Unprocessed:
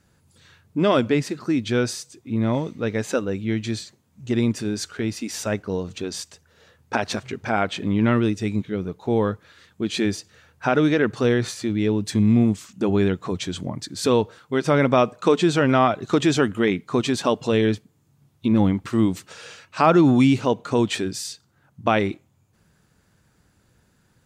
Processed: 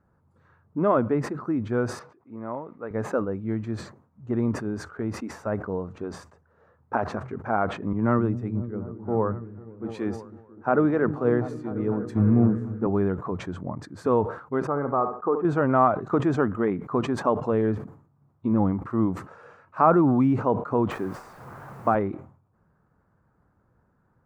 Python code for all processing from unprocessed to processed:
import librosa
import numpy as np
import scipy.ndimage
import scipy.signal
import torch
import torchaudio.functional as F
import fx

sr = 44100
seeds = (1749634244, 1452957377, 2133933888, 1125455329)

y = fx.chain(x, sr, fx.highpass(hz=740.0, slope=6),
    fx.air_absorb(metres=330.0), at=(1.99, 2.91))
y = fx.chain(y, sr, fx.echo_opening(ms=249, hz=200, octaves=1, feedback_pct=70, wet_db=-6),
    fx.band_widen(depth_pct=100), at=(7.93, 12.87))
y = fx.chain(y, sr, fx.ladder_lowpass(hz=1700.0, resonance_pct=25),
    fx.comb(ms=2.5, depth=0.39),
    fx.room_flutter(wall_m=11.9, rt60_s=0.32), at=(14.67, 15.45))
y = fx.chain(y, sr, fx.delta_mod(bps=64000, step_db=-32.0),
    fx.highpass(hz=90.0, slope=24),
    fx.quant_dither(seeds[0], bits=6, dither='triangular'), at=(20.91, 21.95))
y = fx.curve_eq(y, sr, hz=(330.0, 1200.0, 3300.0), db=(0, 5, -25))
y = fx.sustainer(y, sr, db_per_s=110.0)
y = y * librosa.db_to_amplitude(-4.5)